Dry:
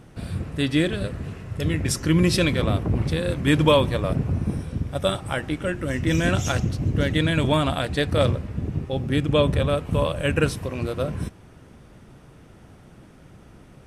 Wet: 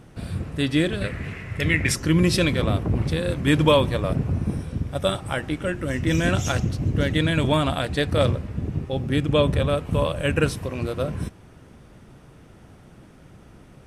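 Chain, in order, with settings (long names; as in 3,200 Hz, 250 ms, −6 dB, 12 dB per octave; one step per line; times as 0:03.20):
0:01.01–0:01.95: parametric band 2,100 Hz +15 dB 0.76 octaves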